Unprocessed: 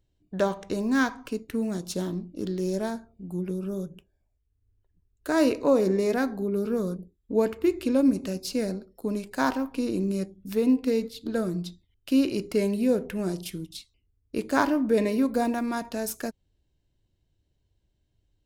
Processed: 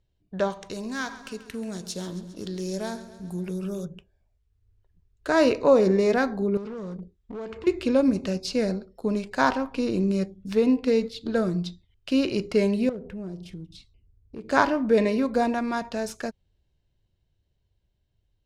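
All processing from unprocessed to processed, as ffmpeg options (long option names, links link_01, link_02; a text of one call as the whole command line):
ffmpeg -i in.wav -filter_complex "[0:a]asettb=1/sr,asplit=3[link_01][link_02][link_03];[link_01]atrim=end=0.504[link_04];[link_02]atrim=start=0.5:end=3.85,asetpts=PTS-STARTPTS,afade=type=in:duration=0.004:curve=qsin,afade=type=out:start_time=3.346:duration=0.004:curve=qsin,aemphasis=mode=production:type=75fm,acompressor=threshold=-34dB:ratio=1.5:attack=3.2:release=140:knee=1:detection=peak,aecho=1:1:135|270|405|540|675|810:0.178|0.107|0.064|0.0384|0.023|0.0138,atrim=end_sample=147735[link_05];[link_03]atrim=start=3.846[link_06];[link_04][link_05]acrossfade=duration=0.004:curve1=hsin:curve2=qsin[link_07];[link_07][link_06]acrossfade=duration=0.004:curve1=qsin:curve2=hsin,asettb=1/sr,asplit=3[link_08][link_09][link_10];[link_08]atrim=end=6.574[link_11];[link_09]atrim=start=6.57:end=7.67,asetpts=PTS-STARTPTS,afade=type=in:duration=0.004:curve=qsin,afade=type=out:start_time=1.096:duration=0.004:curve=qsin,lowpass=frequency=8600:width=0.5412,lowpass=frequency=8600:width=1.3066,acompressor=threshold=-35dB:ratio=5:attack=3.2:release=140:knee=1:detection=peak,volume=34.5dB,asoftclip=hard,volume=-34.5dB[link_12];[link_10]atrim=start=7.666[link_13];[link_11][link_12]acrossfade=duration=0.004:curve1=hsin:curve2=qsin[link_14];[link_14][link_13]acrossfade=duration=0.004:curve1=qsin:curve2=hsin,asettb=1/sr,asplit=3[link_15][link_16][link_17];[link_15]atrim=end=12.894[link_18];[link_16]atrim=start=12.89:end=14.49,asetpts=PTS-STARTPTS,afade=type=in:duration=0.004:curve=qsin,afade=type=out:start_time=1.596:duration=0.004:curve=qsin,tiltshelf=frequency=720:gain=7,acompressor=threshold=-47dB:ratio=2:attack=3.2:release=140:knee=1:detection=peak,volume=31dB,asoftclip=hard,volume=-31dB[link_19];[link_17]atrim=start=14.486[link_20];[link_18][link_19]acrossfade=duration=0.004:curve1=hsin:curve2=qsin[link_21];[link_21][link_20]acrossfade=duration=0.004:curve1=qsin:curve2=hsin,lowpass=5600,equalizer=frequency=290:width=2.8:gain=-7,dynaudnorm=framelen=620:gausssize=9:maxgain=5dB" out.wav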